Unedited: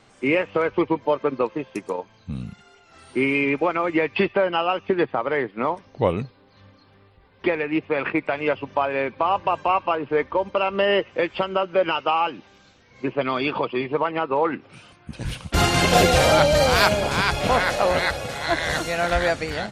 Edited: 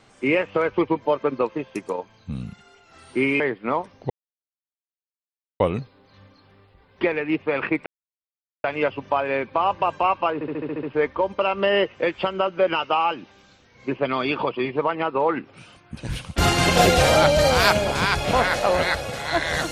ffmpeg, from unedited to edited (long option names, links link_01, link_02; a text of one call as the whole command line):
ffmpeg -i in.wav -filter_complex "[0:a]asplit=11[link_01][link_02][link_03][link_04][link_05][link_06][link_07][link_08][link_09][link_10][link_11];[link_01]atrim=end=3.402[link_12];[link_02]atrim=start=5.328:end=6.03,asetpts=PTS-STARTPTS,afade=type=out:start_time=0.698:duration=0.004:curve=hsin,apad=pad_dur=1.5[link_13];[link_03]atrim=start=6.03:end=8.29,asetpts=PTS-STARTPTS,afade=type=in:duration=0.004:curve=hsin,afade=type=out:start_time=2.256:duration=0.004:curve=hsin,apad=pad_dur=0.78[link_14];[link_04]atrim=start=8.29:end=10.062,asetpts=PTS-STARTPTS,afade=type=in:duration=0.004:curve=hsin[link_15];[link_05]atrim=start=9.988:end=10.062[link_16];[link_06]atrim=start=9.988:end=10.062[link_17];[link_07]atrim=start=9.988:end=10.062[link_18];[link_08]atrim=start=9.988:end=10.062[link_19];[link_09]atrim=start=9.988:end=10.062[link_20];[link_10]atrim=start=9.988:end=10.062[link_21];[link_11]atrim=start=9.988[link_22];[link_13][link_14][link_15]concat=n=3:v=0:a=1[link_23];[link_12][link_23]acrossfade=duration=0.004:curve1=hsin:curve2=hsin[link_24];[link_24][link_16]acrossfade=duration=0.004:curve1=hsin:curve2=hsin[link_25];[link_25][link_17]acrossfade=duration=0.004:curve1=hsin:curve2=hsin[link_26];[link_26][link_18]acrossfade=duration=0.004:curve1=hsin:curve2=hsin[link_27];[link_27][link_19]acrossfade=duration=0.004:curve1=hsin:curve2=hsin[link_28];[link_28][link_20]acrossfade=duration=0.004:curve1=hsin:curve2=hsin[link_29];[link_29][link_21]acrossfade=duration=0.004:curve1=hsin:curve2=hsin[link_30];[link_30][link_22]acrossfade=duration=0.004:curve1=hsin:curve2=hsin" out.wav